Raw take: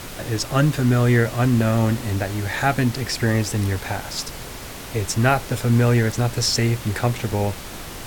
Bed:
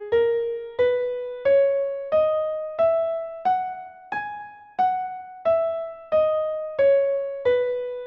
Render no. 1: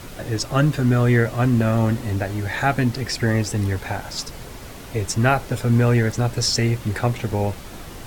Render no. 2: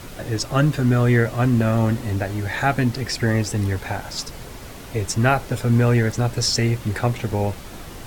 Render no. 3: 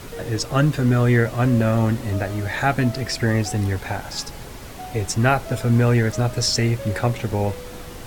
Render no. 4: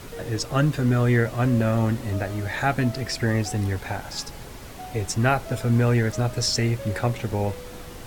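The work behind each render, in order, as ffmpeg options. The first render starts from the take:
-af "afftdn=nr=6:nf=-35"
-af anull
-filter_complex "[1:a]volume=-16.5dB[a];[0:a][a]amix=inputs=2:normalize=0"
-af "volume=-3dB"

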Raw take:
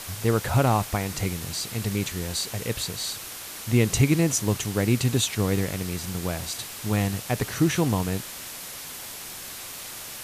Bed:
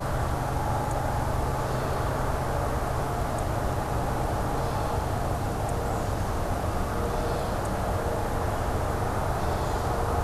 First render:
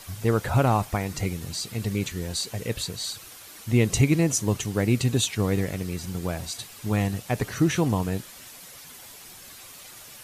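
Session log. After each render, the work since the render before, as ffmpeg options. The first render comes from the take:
-af "afftdn=nr=9:nf=-38"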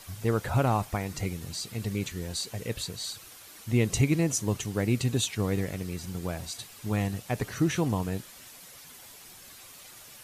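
-af "volume=-4dB"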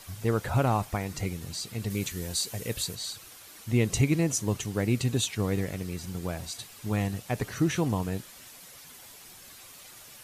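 -filter_complex "[0:a]asettb=1/sr,asplit=3[a][b][c];[a]atrim=end=1.904[d];[b]atrim=start=1.9:end=2.95,asetpts=PTS-STARTPTS,afade=t=in:d=0.004:c=qsin,afade=t=out:st=1.046:d=0.004:c=qsin,highshelf=f=6.3k:g=8.5[e];[c]atrim=start=2.946[f];[d][e]acrossfade=d=0.004:c1=hsin:c2=qsin[g];[g][f]acrossfade=d=0.004:c1=qsin:c2=hsin"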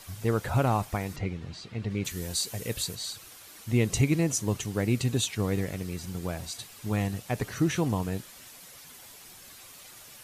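-filter_complex "[0:a]asettb=1/sr,asplit=3[a][b][c];[a]atrim=end=1.164[d];[b]atrim=start=1.16:end=2.05,asetpts=PTS-STARTPTS,afade=t=in:d=0.004:c=qsin,afade=t=out:st=0.886:d=0.004:c=qsin,lowpass=3.1k[e];[c]atrim=start=2.046[f];[d][e]acrossfade=d=0.004:c1=hsin:c2=qsin[g];[g][f]acrossfade=d=0.004:c1=qsin:c2=hsin"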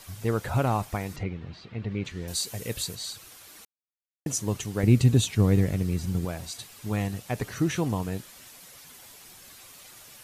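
-filter_complex "[0:a]asettb=1/sr,asplit=3[a][b][c];[a]atrim=end=1.234[d];[b]atrim=start=1.23:end=2.28,asetpts=PTS-STARTPTS,afade=t=in:d=0.004:c=qsin,afade=t=out:st=1.046:d=0.004:c=qsin,lowpass=3.5k[e];[c]atrim=start=2.276[f];[d][e]acrossfade=d=0.004:c1=hsin:c2=qsin[g];[g][f]acrossfade=d=0.004:c1=qsin:c2=hsin,asettb=1/sr,asplit=3[h][i][j];[h]atrim=end=4.834[k];[i]atrim=start=4.83:end=6.25,asetpts=PTS-STARTPTS,afade=t=in:d=0.004:c=qsin,afade=t=out:st=1.416:d=0.004:c=qsin,lowshelf=f=300:g=10.5[l];[j]atrim=start=6.246[m];[k][l]acrossfade=d=0.004:c1=hsin:c2=qsin[n];[n][m]acrossfade=d=0.004:c1=qsin:c2=hsin,asplit=3[o][p][q];[o]atrim=end=3.65,asetpts=PTS-STARTPTS,afade=t=out:st=3.646:d=0.004:c=hsin[r];[p]atrim=start=3.65:end=4.26,asetpts=PTS-STARTPTS,volume=0[s];[q]atrim=start=4.26,asetpts=PTS-STARTPTS,afade=t=in:d=0.004:c=hsin[t];[r][s][t]concat=n=3:v=0:a=1"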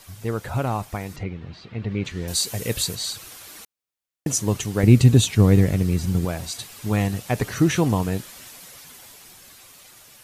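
-af "dynaudnorm=f=400:g=11:m=11.5dB"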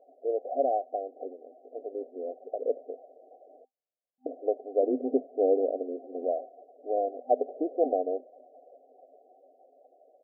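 -af "afftfilt=real='re*between(b*sr/4096,250,780)':imag='im*between(b*sr/4096,250,780)':win_size=4096:overlap=0.75,aecho=1:1:1.6:0.78"

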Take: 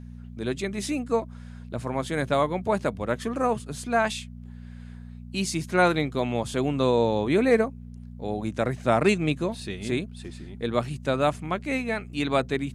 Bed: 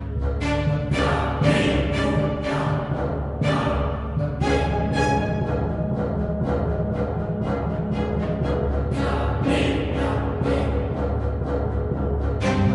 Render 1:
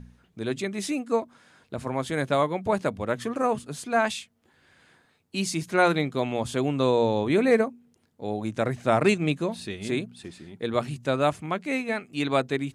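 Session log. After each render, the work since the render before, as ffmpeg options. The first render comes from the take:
-af "bandreject=f=60:t=h:w=4,bandreject=f=120:t=h:w=4,bandreject=f=180:t=h:w=4,bandreject=f=240:t=h:w=4"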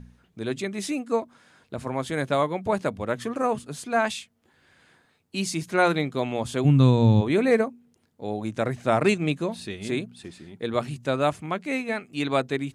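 -filter_complex "[0:a]asplit=3[a][b][c];[a]afade=t=out:st=6.64:d=0.02[d];[b]asubboost=boost=11.5:cutoff=150,afade=t=in:st=6.64:d=0.02,afade=t=out:st=7.2:d=0.02[e];[c]afade=t=in:st=7.2:d=0.02[f];[d][e][f]amix=inputs=3:normalize=0"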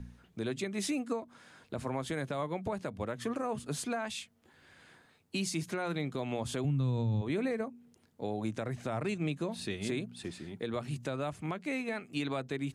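-filter_complex "[0:a]acrossover=split=150[a][b];[b]acompressor=threshold=-26dB:ratio=4[c];[a][c]amix=inputs=2:normalize=0,alimiter=level_in=0.5dB:limit=-24dB:level=0:latency=1:release=273,volume=-0.5dB"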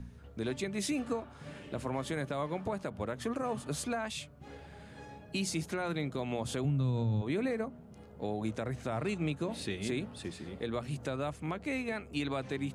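-filter_complex "[1:a]volume=-29dB[a];[0:a][a]amix=inputs=2:normalize=0"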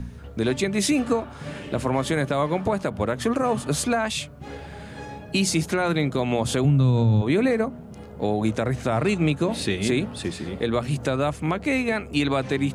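-af "volume=12dB"

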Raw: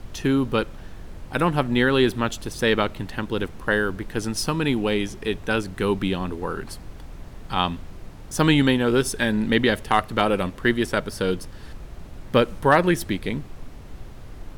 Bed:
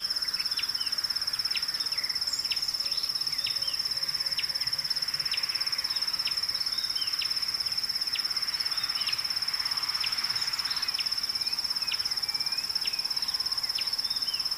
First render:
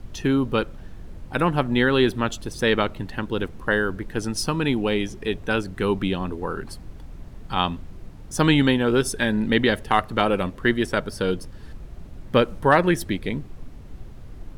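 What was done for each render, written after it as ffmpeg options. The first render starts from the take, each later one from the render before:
-af "afftdn=nr=6:nf=-41"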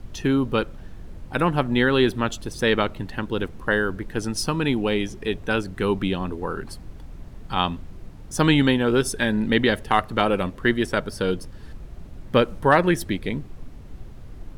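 -af anull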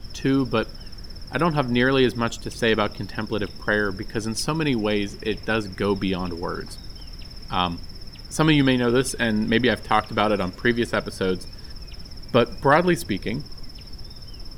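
-filter_complex "[1:a]volume=-15.5dB[a];[0:a][a]amix=inputs=2:normalize=0"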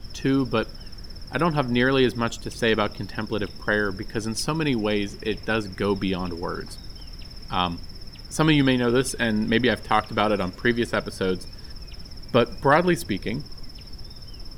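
-af "volume=-1dB"

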